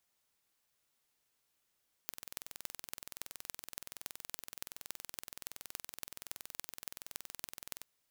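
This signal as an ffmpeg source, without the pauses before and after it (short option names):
-f lavfi -i "aevalsrc='0.266*eq(mod(n,2070),0)*(0.5+0.5*eq(mod(n,12420),0))':d=5.77:s=44100"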